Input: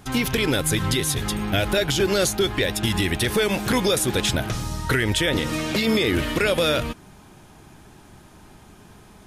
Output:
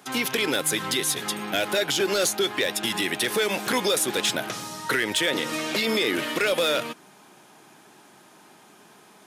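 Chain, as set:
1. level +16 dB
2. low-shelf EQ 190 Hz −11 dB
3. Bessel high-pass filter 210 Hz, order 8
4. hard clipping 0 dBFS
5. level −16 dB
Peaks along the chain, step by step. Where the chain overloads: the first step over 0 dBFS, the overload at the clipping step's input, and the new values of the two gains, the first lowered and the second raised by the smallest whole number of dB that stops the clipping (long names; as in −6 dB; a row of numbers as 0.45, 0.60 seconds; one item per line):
+6.5, +7.0, +7.5, 0.0, −16.0 dBFS
step 1, 7.5 dB
step 1 +8 dB, step 5 −8 dB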